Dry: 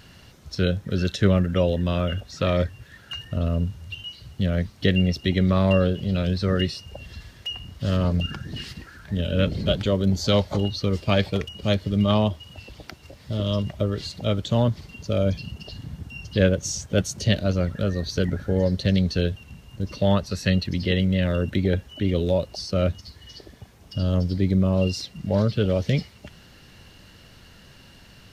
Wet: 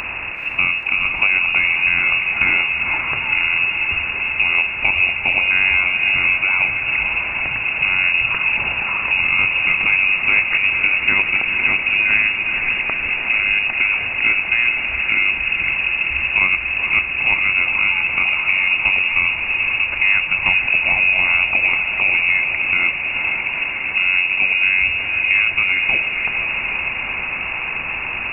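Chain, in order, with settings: spectral levelling over time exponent 0.6; compression 2:1, threshold -28 dBFS, peak gain reduction 9.5 dB; frequency inversion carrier 2.7 kHz; echo that smears into a reverb 476 ms, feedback 75%, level -6.5 dB; trim +8 dB

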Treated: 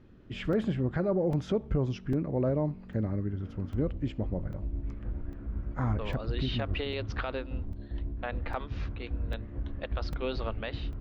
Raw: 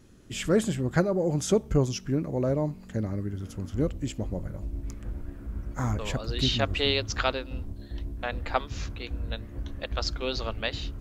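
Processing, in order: peak limiter -18.5 dBFS, peak gain reduction 10.5 dB; distance through air 340 m; crackling interface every 0.80 s, samples 128, zero, from 0.53 s

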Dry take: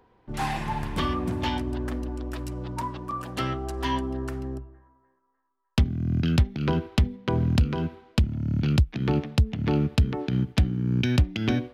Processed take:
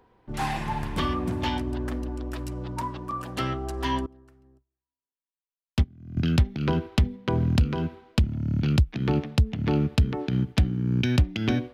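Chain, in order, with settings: 4.06–6.17 s: upward expansion 2.5:1, over -41 dBFS

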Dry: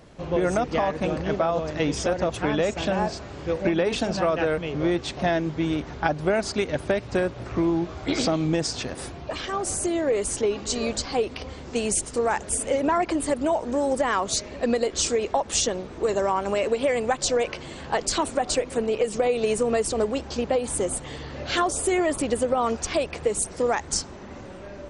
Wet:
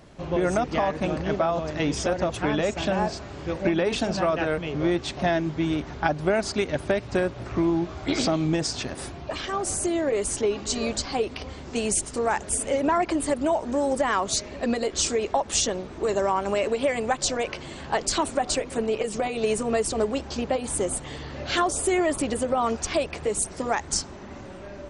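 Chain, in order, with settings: band-stop 490 Hz, Q 12

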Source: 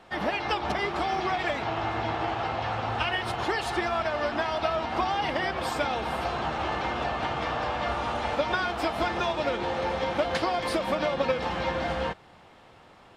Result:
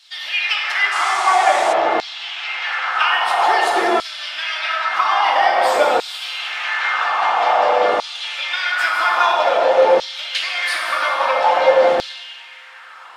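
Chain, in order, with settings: reverb removal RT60 0.64 s; in parallel at 0 dB: compression, threshold -35 dBFS, peak gain reduction 13 dB; on the sum: plate-style reverb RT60 2.3 s, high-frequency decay 0.75×, DRR -1.5 dB; LFO high-pass saw down 0.5 Hz 400–4400 Hz; 0.91–1.72 s: band noise 2.3–9 kHz -38 dBFS; trim +4.5 dB

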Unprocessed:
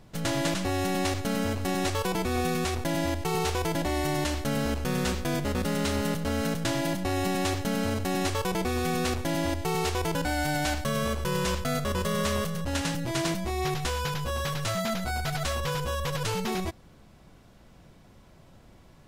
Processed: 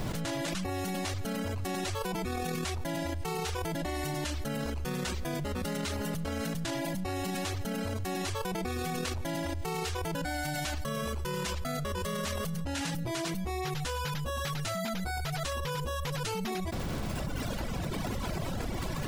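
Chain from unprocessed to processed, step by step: crackle 210 per s -55 dBFS; peak limiter -26.5 dBFS, peak gain reduction 10 dB; reverb removal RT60 1.7 s; level flattener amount 100%

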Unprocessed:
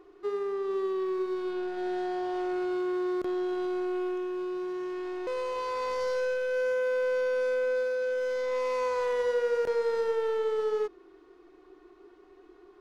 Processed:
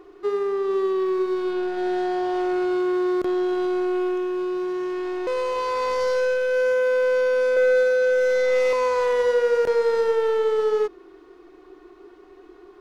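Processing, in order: 7.56–8.73 s: comb 5.4 ms, depth 99%; trim +7.5 dB

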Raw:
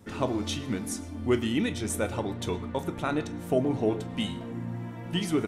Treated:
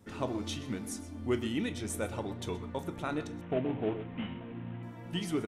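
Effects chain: 3.41–4.83 s: CVSD coder 16 kbps; delay 126 ms -17.5 dB; trim -6 dB

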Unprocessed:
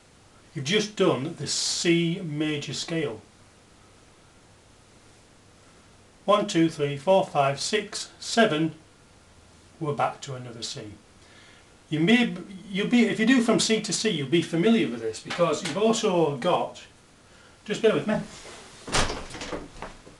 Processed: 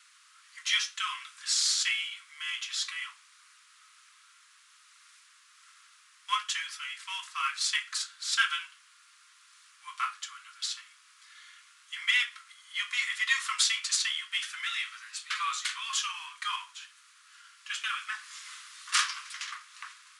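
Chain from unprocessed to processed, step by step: steep high-pass 1.1 kHz 72 dB/octave

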